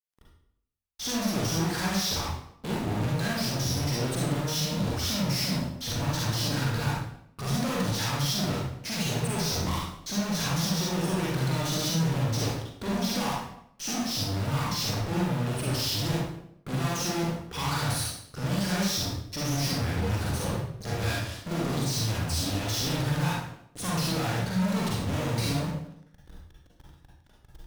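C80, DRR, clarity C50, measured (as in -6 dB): 4.0 dB, -4.5 dB, -1.0 dB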